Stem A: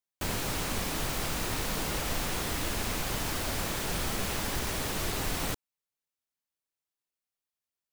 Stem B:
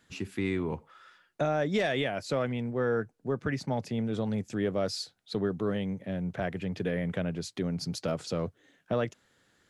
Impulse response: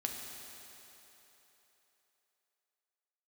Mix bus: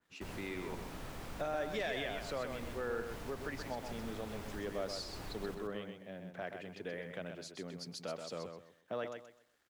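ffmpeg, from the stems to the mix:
-filter_complex "[0:a]volume=-12.5dB,asplit=2[link_01][link_02];[link_02]volume=-7.5dB[link_03];[1:a]highpass=frequency=660:poles=1,acrusher=bits=10:mix=0:aa=0.000001,adynamicequalizer=threshold=0.00316:dfrequency=2600:dqfactor=0.7:tfrequency=2600:tqfactor=0.7:attack=5:release=100:ratio=0.375:range=3:mode=boostabove:tftype=highshelf,volume=-5.5dB,asplit=3[link_04][link_05][link_06];[link_05]volume=-6.5dB[link_07];[link_06]apad=whole_len=353700[link_08];[link_01][link_08]sidechaincompress=threshold=-42dB:ratio=8:attack=46:release=228[link_09];[link_03][link_07]amix=inputs=2:normalize=0,aecho=0:1:128|256|384|512:1|0.26|0.0676|0.0176[link_10];[link_09][link_04][link_10]amix=inputs=3:normalize=0,highshelf=frequency=2700:gain=-10.5"

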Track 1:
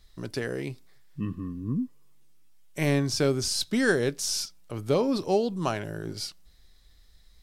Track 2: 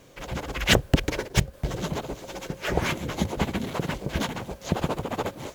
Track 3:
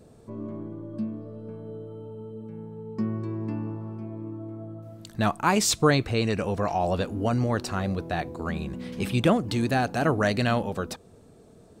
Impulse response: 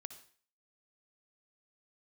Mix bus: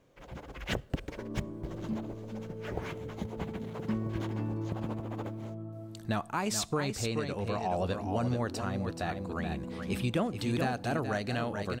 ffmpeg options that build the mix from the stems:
-filter_complex "[1:a]acrusher=bits=7:mode=log:mix=0:aa=0.000001,highshelf=frequency=2900:gain=-9.5,volume=-13dB,asplit=2[link_01][link_02];[link_02]volume=-11.5dB[link_03];[2:a]adelay=900,volume=-5.5dB,asplit=3[link_04][link_05][link_06];[link_05]volume=-14dB[link_07];[link_06]volume=-6.5dB[link_08];[3:a]atrim=start_sample=2205[link_09];[link_03][link_07]amix=inputs=2:normalize=0[link_10];[link_10][link_09]afir=irnorm=-1:irlink=0[link_11];[link_08]aecho=0:1:428:1[link_12];[link_01][link_04][link_11][link_12]amix=inputs=4:normalize=0,alimiter=limit=-20.5dB:level=0:latency=1:release=433"

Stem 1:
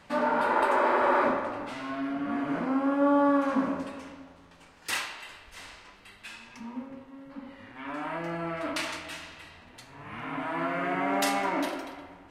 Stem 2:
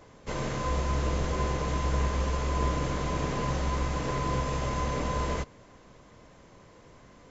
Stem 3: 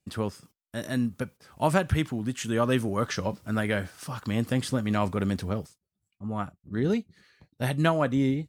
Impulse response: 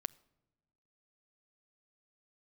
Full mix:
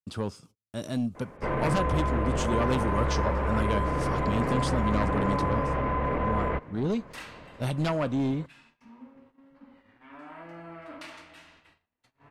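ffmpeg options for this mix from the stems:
-filter_complex "[0:a]highshelf=frequency=5500:gain=-11,adelay=2250,volume=-11.5dB,asplit=2[link_01][link_02];[link_02]volume=-14dB[link_03];[1:a]lowpass=frequency=2300:width=0.5412,lowpass=frequency=2300:width=1.3066,equalizer=frequency=820:width=0.34:gain=4,adelay=1150,volume=2.5dB[link_04];[2:a]lowpass=8900,equalizer=frequency=1800:width_type=o:width=0.35:gain=-11.5,aeval=exprs='0.299*sin(PI/2*2.51*val(0)/0.299)':channel_layout=same,volume=-14dB,asplit=2[link_05][link_06];[link_06]volume=-10.5dB[link_07];[link_01][link_04]amix=inputs=2:normalize=0,highshelf=frequency=9300:gain=6,alimiter=limit=-20dB:level=0:latency=1:release=13,volume=0dB[link_08];[3:a]atrim=start_sample=2205[link_09];[link_03][link_07]amix=inputs=2:normalize=0[link_10];[link_10][link_09]afir=irnorm=-1:irlink=0[link_11];[link_05][link_08][link_11]amix=inputs=3:normalize=0,agate=range=-26dB:threshold=-58dB:ratio=16:detection=peak"

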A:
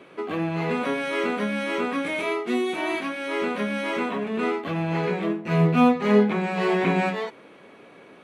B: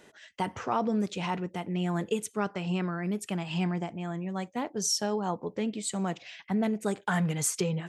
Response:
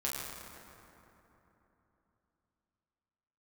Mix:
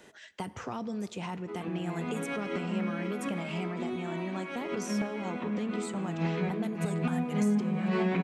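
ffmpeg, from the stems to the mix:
-filter_complex "[0:a]lowpass=6800,equalizer=frequency=190:width_type=o:width=0.51:gain=9,adelay=1300,volume=-6dB,asplit=2[link_01][link_02];[link_02]volume=-15.5dB[link_03];[1:a]acrossover=split=260|2400|7200[link_04][link_05][link_06][link_07];[link_04]acompressor=threshold=-40dB:ratio=4[link_08];[link_05]acompressor=threshold=-40dB:ratio=4[link_09];[link_06]acompressor=threshold=-54dB:ratio=4[link_10];[link_07]acompressor=threshold=-51dB:ratio=4[link_11];[link_08][link_09][link_10][link_11]amix=inputs=4:normalize=0,volume=0.5dB,asplit=3[link_12][link_13][link_14];[link_13]volume=-21dB[link_15];[link_14]apad=whole_len=420326[link_16];[link_01][link_16]sidechaincompress=threshold=-50dB:ratio=8:attack=5.5:release=112[link_17];[2:a]atrim=start_sample=2205[link_18];[link_03][link_15]amix=inputs=2:normalize=0[link_19];[link_19][link_18]afir=irnorm=-1:irlink=0[link_20];[link_17][link_12][link_20]amix=inputs=3:normalize=0,alimiter=limit=-19.5dB:level=0:latency=1:release=359"

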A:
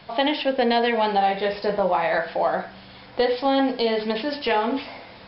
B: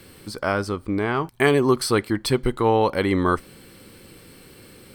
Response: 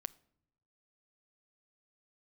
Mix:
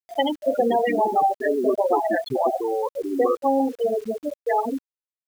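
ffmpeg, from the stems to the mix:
-filter_complex "[0:a]volume=1dB,asplit=2[link_01][link_02];[link_02]volume=-21dB[link_03];[1:a]aeval=exprs='(tanh(8.91*val(0)+0.55)-tanh(0.55))/8.91':channel_layout=same,volume=3dB[link_04];[2:a]atrim=start_sample=2205[link_05];[link_03][link_05]afir=irnorm=-1:irlink=0[link_06];[link_01][link_04][link_06]amix=inputs=3:normalize=0,highpass=frequency=220:poles=1,afftfilt=real='re*gte(hypot(re,im),0.355)':imag='im*gte(hypot(re,im),0.355)':win_size=1024:overlap=0.75,acrusher=bits=7:mix=0:aa=0.000001"

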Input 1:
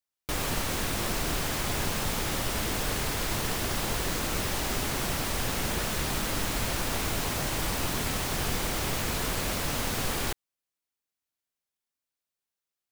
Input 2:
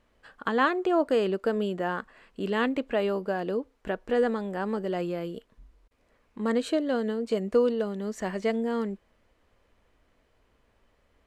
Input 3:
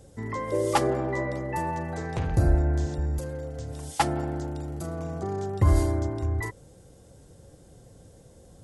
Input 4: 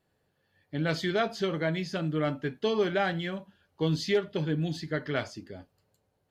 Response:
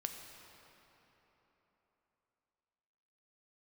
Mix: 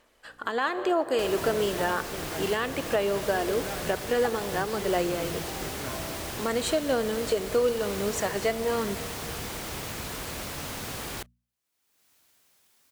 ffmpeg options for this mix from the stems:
-filter_complex "[0:a]highpass=45,bandreject=frequency=60:width_type=h:width=6,bandreject=frequency=120:width_type=h:width=6,bandreject=frequency=180:width_type=h:width=6,bandreject=frequency=240:width_type=h:width=6,acompressor=mode=upward:threshold=-36dB:ratio=2.5,adelay=900,volume=-5dB[link_01];[1:a]bass=frequency=250:gain=-13,treble=frequency=4000:gain=1,aphaser=in_gain=1:out_gain=1:delay=3:decay=0.29:speed=1:type=sinusoidal,aemphasis=mode=production:type=cd,volume=1dB,asplit=2[link_02][link_03];[link_03]volume=-3.5dB[link_04];[2:a]aeval=exprs='val(0)+0.0141*(sin(2*PI*60*n/s)+sin(2*PI*2*60*n/s)/2+sin(2*PI*3*60*n/s)/3+sin(2*PI*4*60*n/s)/4+sin(2*PI*5*60*n/s)/5)':channel_layout=same,bandpass=frequency=690:width_type=q:width=1.4:csg=0,adelay=250,volume=-6.5dB[link_05];[3:a]adelay=700,volume=-11dB[link_06];[4:a]atrim=start_sample=2205[link_07];[link_04][link_07]afir=irnorm=-1:irlink=0[link_08];[link_01][link_02][link_05][link_06][link_08]amix=inputs=5:normalize=0,alimiter=limit=-15.5dB:level=0:latency=1:release=326"

